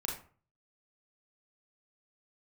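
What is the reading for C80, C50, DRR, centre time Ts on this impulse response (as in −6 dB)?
10.5 dB, 5.0 dB, −2.0 dB, 32 ms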